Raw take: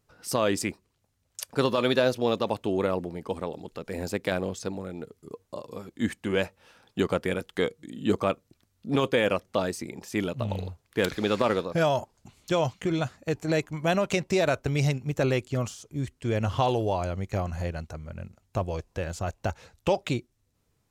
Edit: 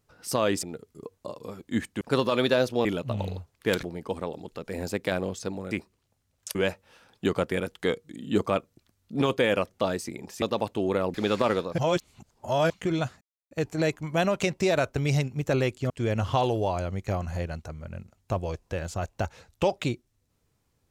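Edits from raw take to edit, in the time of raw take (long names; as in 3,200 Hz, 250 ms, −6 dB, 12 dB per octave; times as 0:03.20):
0:00.63–0:01.47: swap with 0:04.91–0:06.29
0:02.31–0:03.03: swap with 0:10.16–0:11.14
0:11.78–0:12.70: reverse
0:13.21: splice in silence 0.30 s
0:15.60–0:16.15: remove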